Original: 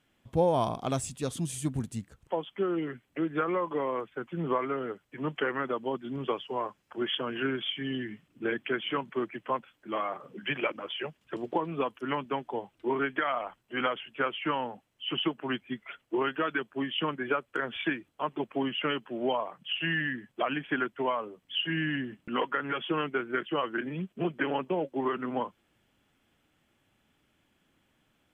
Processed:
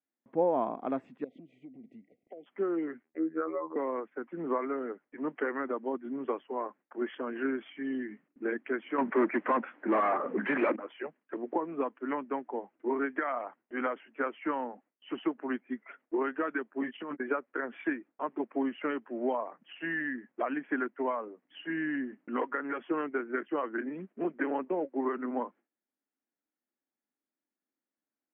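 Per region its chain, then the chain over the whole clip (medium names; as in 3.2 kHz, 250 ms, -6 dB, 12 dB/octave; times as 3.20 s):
1.24–2.46 s: brick-wall FIR band-stop 780–1900 Hz + compression 12:1, threshold -40 dBFS
3.03–3.76 s: resonances exaggerated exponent 1.5 + robot voice 80.1 Hz
8.98–10.76 s: peaking EQ 180 Hz +6 dB 1.5 oct + overdrive pedal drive 28 dB, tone 2 kHz, clips at -16 dBFS + loudspeaker Doppler distortion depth 0.14 ms
16.81–17.22 s: gate -37 dBFS, range -24 dB + doubling 13 ms -5 dB + compressor with a negative ratio -33 dBFS
whole clip: Chebyshev band-pass 250–2000 Hz, order 3; gate with hold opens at -59 dBFS; bass shelf 370 Hz +6.5 dB; trim -3.5 dB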